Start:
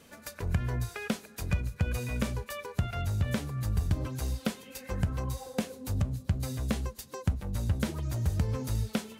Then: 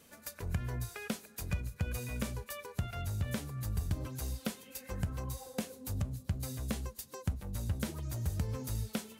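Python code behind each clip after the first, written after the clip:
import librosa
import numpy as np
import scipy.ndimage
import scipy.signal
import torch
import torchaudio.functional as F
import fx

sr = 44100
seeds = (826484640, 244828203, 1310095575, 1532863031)

y = fx.high_shelf(x, sr, hz=7500.0, db=9.0)
y = y * librosa.db_to_amplitude(-6.0)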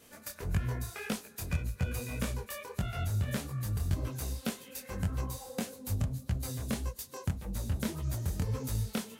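y = fx.detune_double(x, sr, cents=60)
y = y * librosa.db_to_amplitude(6.5)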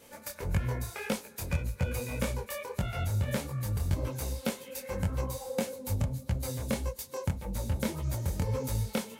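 y = fx.small_body(x, sr, hz=(540.0, 880.0, 2200.0), ring_ms=45, db=10)
y = y * librosa.db_to_amplitude(1.5)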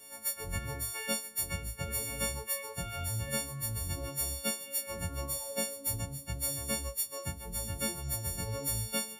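y = fx.freq_snap(x, sr, grid_st=4)
y = y * librosa.db_to_amplitude(-6.0)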